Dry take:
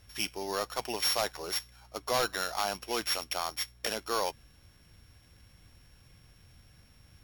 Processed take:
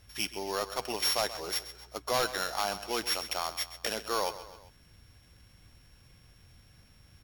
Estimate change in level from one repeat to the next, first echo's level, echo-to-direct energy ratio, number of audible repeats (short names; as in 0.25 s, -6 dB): -5.5 dB, -14.0 dB, -12.5 dB, 3